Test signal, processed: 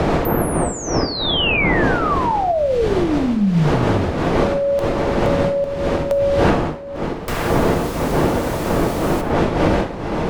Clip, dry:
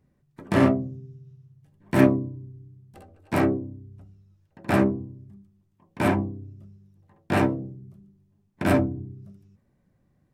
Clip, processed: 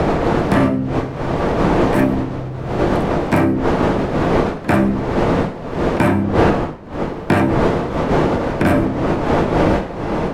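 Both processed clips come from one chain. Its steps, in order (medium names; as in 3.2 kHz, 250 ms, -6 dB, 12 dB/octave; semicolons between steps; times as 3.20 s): wind noise 560 Hz -24 dBFS; sine folder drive 6 dB, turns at 2.5 dBFS; gated-style reverb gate 170 ms falling, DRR 8 dB; three bands compressed up and down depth 100%; trim -4.5 dB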